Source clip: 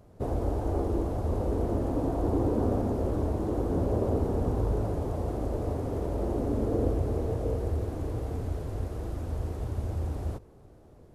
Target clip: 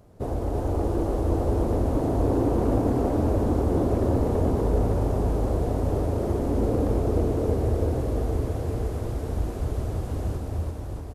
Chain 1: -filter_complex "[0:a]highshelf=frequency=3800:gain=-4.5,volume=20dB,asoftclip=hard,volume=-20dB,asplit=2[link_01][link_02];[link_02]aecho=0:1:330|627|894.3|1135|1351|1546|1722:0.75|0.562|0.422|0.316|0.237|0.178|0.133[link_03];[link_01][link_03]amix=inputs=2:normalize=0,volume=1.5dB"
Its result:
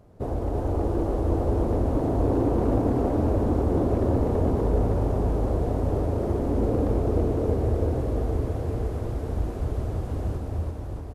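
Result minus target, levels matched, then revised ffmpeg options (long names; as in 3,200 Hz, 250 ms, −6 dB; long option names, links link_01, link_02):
8,000 Hz band −5.5 dB
-filter_complex "[0:a]highshelf=frequency=3800:gain=2.5,volume=20dB,asoftclip=hard,volume=-20dB,asplit=2[link_01][link_02];[link_02]aecho=0:1:330|627|894.3|1135|1351|1546|1722:0.75|0.562|0.422|0.316|0.237|0.178|0.133[link_03];[link_01][link_03]amix=inputs=2:normalize=0,volume=1.5dB"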